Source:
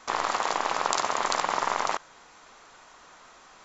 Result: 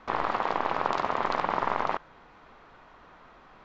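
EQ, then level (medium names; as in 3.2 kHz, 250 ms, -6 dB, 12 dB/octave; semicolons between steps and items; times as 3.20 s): distance through air 330 m; bass shelf 280 Hz +9 dB; 0.0 dB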